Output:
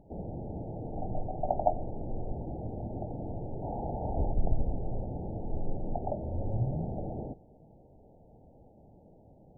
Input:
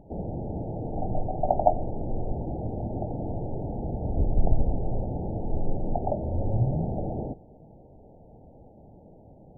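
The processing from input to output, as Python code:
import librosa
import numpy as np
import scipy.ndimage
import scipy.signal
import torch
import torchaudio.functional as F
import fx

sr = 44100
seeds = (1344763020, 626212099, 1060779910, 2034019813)

y = fx.peak_eq(x, sr, hz=870.0, db=11.5, octaves=1.2, at=(3.62, 4.31), fade=0.02)
y = y * 10.0 ** (-6.0 / 20.0)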